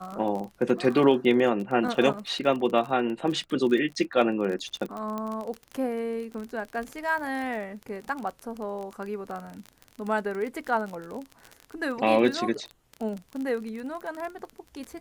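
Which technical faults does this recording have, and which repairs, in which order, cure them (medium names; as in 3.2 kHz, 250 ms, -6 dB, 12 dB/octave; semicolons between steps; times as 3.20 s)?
crackle 33 per s -31 dBFS
2.13–2.14 s: dropout 7.2 ms
5.18 s: pop -20 dBFS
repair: de-click; interpolate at 2.13 s, 7.2 ms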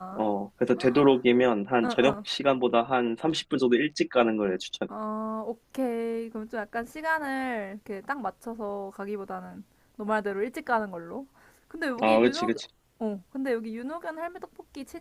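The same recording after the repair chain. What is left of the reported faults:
nothing left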